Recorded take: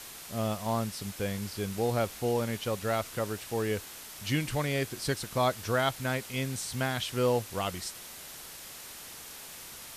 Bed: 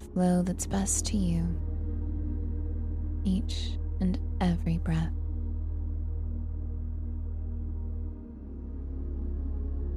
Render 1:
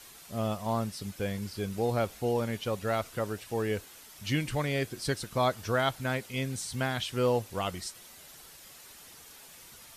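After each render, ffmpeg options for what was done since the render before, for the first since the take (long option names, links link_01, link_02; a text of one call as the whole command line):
ffmpeg -i in.wav -af "afftdn=noise_reduction=8:noise_floor=-46" out.wav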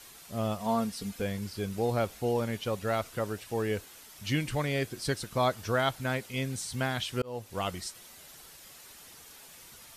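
ffmpeg -i in.wav -filter_complex "[0:a]asettb=1/sr,asplit=3[link_01][link_02][link_03];[link_01]atrim=end=0.604[link_04];[link_02]atrim=start=0.6:end=1.22,asetpts=PTS-STARTPTS,afade=type=in:duration=0.004:curve=qsin,afade=type=out:start_time=0.616:duration=0.004:curve=qsin,aecho=1:1:4.3:0.65,atrim=end_sample=27342[link_05];[link_03]atrim=start=1.216[link_06];[link_04][link_05]acrossfade=duration=0.004:curve1=hsin:curve2=qsin[link_07];[link_07][link_06]acrossfade=duration=0.004:curve1=qsin:curve2=hsin,asplit=2[link_08][link_09];[link_08]atrim=end=7.22,asetpts=PTS-STARTPTS,afade=type=out:start_time=7.216:duration=0.004:curve=hsin[link_10];[link_09]atrim=start=7.22,asetpts=PTS-STARTPTS,afade=type=in:duration=0.4[link_11];[link_10][link_11]concat=n=2:v=0:a=1" out.wav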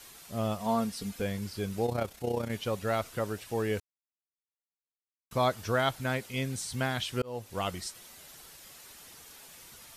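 ffmpeg -i in.wav -filter_complex "[0:a]asettb=1/sr,asplit=3[link_01][link_02][link_03];[link_01]atrim=end=1.864[link_04];[link_02]atrim=start=1.86:end=2.51,asetpts=PTS-STARTPTS,afade=type=in:duration=0.004:curve=qsin,afade=type=out:start_time=0.646:duration=0.004:curve=qsin,tremolo=f=31:d=0.667[link_05];[link_03]atrim=start=2.506[link_06];[link_04][link_05]acrossfade=duration=0.004:curve1=hsin:curve2=qsin[link_07];[link_07][link_06]acrossfade=duration=0.004:curve1=qsin:curve2=hsin,asplit=3[link_08][link_09][link_10];[link_08]atrim=end=3.8,asetpts=PTS-STARTPTS,afade=type=out:start_time=3.796:duration=0.004:curve=hsin[link_11];[link_09]atrim=start=3.8:end=5.31,asetpts=PTS-STARTPTS,volume=0[link_12];[link_10]atrim=start=5.31,asetpts=PTS-STARTPTS,afade=type=in:duration=0.004:curve=hsin[link_13];[link_11][link_12][link_13]concat=n=3:v=0:a=1" out.wav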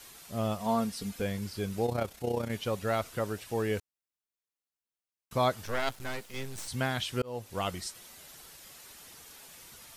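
ffmpeg -i in.wav -filter_complex "[0:a]asettb=1/sr,asplit=3[link_01][link_02][link_03];[link_01]atrim=end=5.654[link_04];[link_02]atrim=start=5.65:end=6.68,asetpts=PTS-STARTPTS,afade=type=in:duration=0.004:curve=qsin,afade=type=out:start_time=1.026:duration=0.004:curve=qsin,aeval=exprs='max(val(0),0)':channel_layout=same[link_05];[link_03]atrim=start=6.676[link_06];[link_04][link_05]acrossfade=duration=0.004:curve1=hsin:curve2=qsin[link_07];[link_07][link_06]acrossfade=duration=0.004:curve1=qsin:curve2=hsin" out.wav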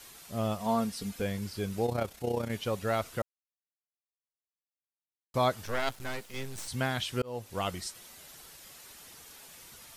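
ffmpeg -i in.wav -filter_complex "[0:a]asplit=3[link_01][link_02][link_03];[link_01]atrim=end=3.22,asetpts=PTS-STARTPTS,afade=type=out:start_time=3.216:duration=0.004:curve=hsin[link_04];[link_02]atrim=start=3.22:end=5.34,asetpts=PTS-STARTPTS,volume=0[link_05];[link_03]atrim=start=5.34,asetpts=PTS-STARTPTS,afade=type=in:duration=0.004:curve=hsin[link_06];[link_04][link_05][link_06]concat=n=3:v=0:a=1" out.wav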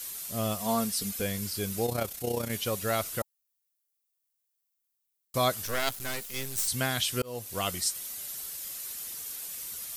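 ffmpeg -i in.wav -af "aemphasis=mode=production:type=75kf,bandreject=frequency=870:width=12" out.wav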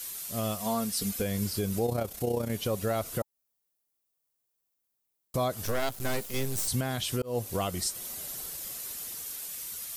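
ffmpeg -i in.wav -filter_complex "[0:a]acrossover=split=970[link_01][link_02];[link_01]dynaudnorm=framelen=200:gausssize=13:maxgain=9dB[link_03];[link_03][link_02]amix=inputs=2:normalize=0,alimiter=limit=-19dB:level=0:latency=1:release=192" out.wav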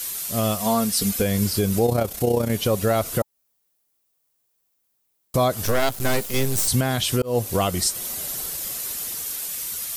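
ffmpeg -i in.wav -af "volume=9dB" out.wav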